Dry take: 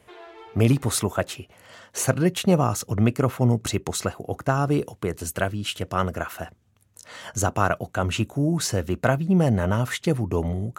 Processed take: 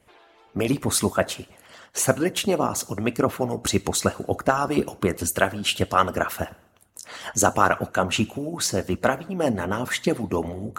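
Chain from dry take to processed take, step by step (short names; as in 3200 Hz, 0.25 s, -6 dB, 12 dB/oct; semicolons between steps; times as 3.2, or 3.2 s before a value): two-slope reverb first 0.56 s, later 1.5 s, from -18 dB, DRR 9.5 dB; vocal rider 2 s; harmonic-percussive split harmonic -17 dB; gain +4 dB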